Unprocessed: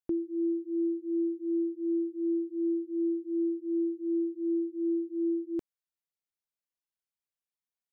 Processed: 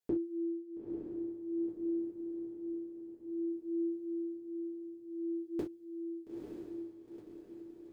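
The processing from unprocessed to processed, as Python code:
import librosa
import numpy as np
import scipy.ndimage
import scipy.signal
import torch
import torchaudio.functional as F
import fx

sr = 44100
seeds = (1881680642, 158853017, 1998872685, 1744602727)

p1 = x * (1.0 - 0.72 / 2.0 + 0.72 / 2.0 * np.cos(2.0 * np.pi * 0.53 * (np.arange(len(x)) / sr)))
p2 = p1 + fx.echo_diffused(p1, sr, ms=915, feedback_pct=55, wet_db=-3.5, dry=0)
p3 = fx.rev_gated(p2, sr, seeds[0], gate_ms=90, shape='falling', drr_db=-6.0)
y = p3 * librosa.db_to_amplitude(-2.5)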